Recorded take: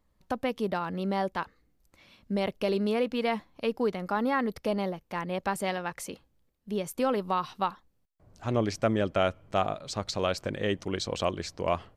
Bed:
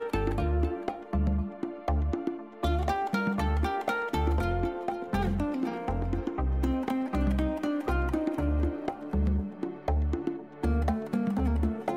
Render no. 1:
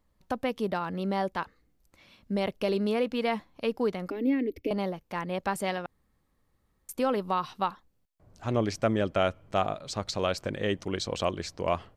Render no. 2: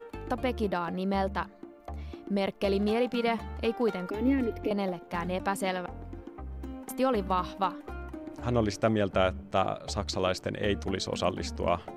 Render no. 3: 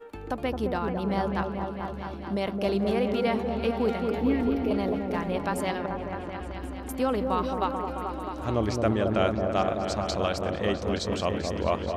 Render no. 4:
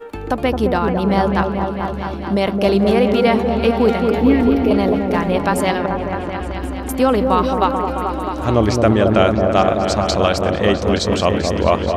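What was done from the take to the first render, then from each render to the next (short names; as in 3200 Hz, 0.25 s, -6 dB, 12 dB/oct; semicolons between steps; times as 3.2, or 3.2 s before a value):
4.1–4.71 EQ curve 100 Hz 0 dB, 160 Hz -27 dB, 300 Hz +14 dB, 860 Hz -21 dB, 1300 Hz -26 dB, 2300 Hz +1 dB, 4000 Hz -12 dB, 5900 Hz -11 dB, 9400 Hz -18 dB, 14000 Hz 0 dB; 5.86–6.89 room tone
add bed -12 dB
repeats that get brighter 0.218 s, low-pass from 750 Hz, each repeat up 1 oct, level -3 dB
gain +11.5 dB; limiter -1 dBFS, peak gain reduction 2 dB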